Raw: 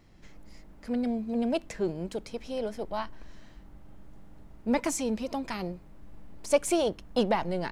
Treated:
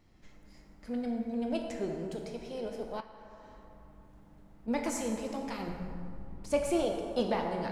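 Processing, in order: 5.68–6.86 tone controls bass +11 dB, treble -4 dB; plate-style reverb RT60 2.4 s, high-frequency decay 0.5×, DRR 1 dB; 3–4.68 compressor 6:1, threshold -41 dBFS, peak gain reduction 12.5 dB; gain -6.5 dB

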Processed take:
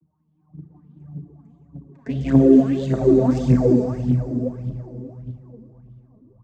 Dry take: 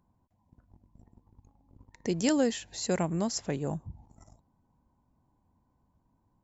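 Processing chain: vocoder on a gliding note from D#3, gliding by -7 st; bell 180 Hz +13.5 dB 1 oct; AM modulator 78 Hz, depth 25%; low shelf 450 Hz +4 dB; reverb RT60 3.3 s, pre-delay 27 ms, DRR -3.5 dB; AGC gain up to 9 dB; phaser 1.7 Hz, delay 4.8 ms, feedback 64%; LFO bell 1.6 Hz 340–3400 Hz +15 dB; gain -7.5 dB

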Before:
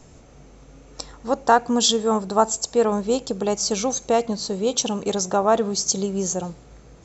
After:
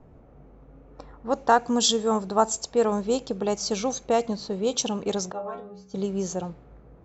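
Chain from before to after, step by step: 5.32–5.94 metallic resonator 61 Hz, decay 0.73 s, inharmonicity 0.008; low-pass opened by the level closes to 1100 Hz, open at -15.5 dBFS; gain -3 dB

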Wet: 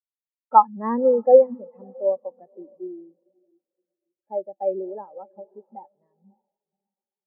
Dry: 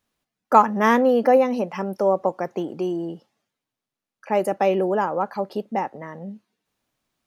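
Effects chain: diffused feedback echo 0.561 s, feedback 47%, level -11 dB; spectral expander 2.5:1

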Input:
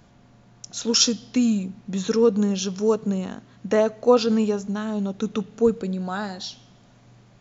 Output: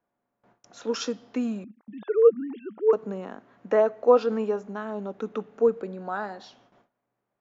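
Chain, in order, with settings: 1.64–2.93 sine-wave speech; three-band isolator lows -19 dB, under 290 Hz, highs -19 dB, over 2100 Hz; gate with hold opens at -49 dBFS

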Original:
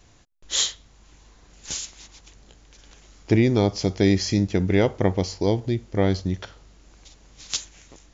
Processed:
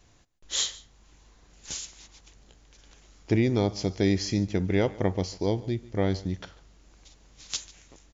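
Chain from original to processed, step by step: echo 0.145 s -20.5 dB; gain -5 dB

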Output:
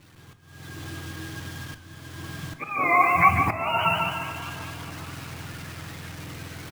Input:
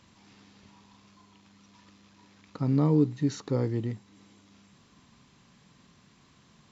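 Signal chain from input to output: spectrum mirrored in octaves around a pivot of 570 Hz; compressor 5:1, threshold -31 dBFS, peak gain reduction 10.5 dB; requantised 10-bit, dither none; feedback echo 0.147 s, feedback 46%, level -7 dB; auto swell 0.549 s; reverb, pre-delay 6 ms, DRR 9.5 dB; AGC gain up to 15 dB; dynamic EQ 4000 Hz, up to -6 dB, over -42 dBFS, Q 0.86; warbling echo 0.203 s, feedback 75%, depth 122 cents, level -16.5 dB; gain +4 dB

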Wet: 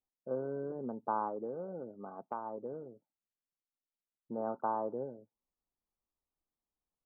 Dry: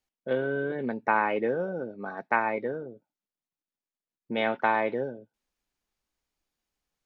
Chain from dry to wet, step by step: steep low-pass 1300 Hz 72 dB/oct; 1.28–2.72 compressor 2.5:1, threshold -29 dBFS, peak gain reduction 6.5 dB; gain -8.5 dB

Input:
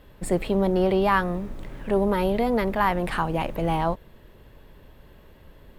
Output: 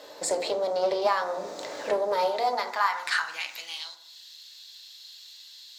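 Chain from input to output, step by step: band shelf 5400 Hz +15.5 dB 1.2 oct; compressor 6:1, threshold -31 dBFS, peak gain reduction 14.5 dB; high-pass sweep 580 Hz -> 3700 Hz, 2.18–3.93; FDN reverb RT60 0.72 s, low-frequency decay 1.3×, high-frequency decay 0.4×, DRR 4 dB; Doppler distortion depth 0.12 ms; gain +5.5 dB

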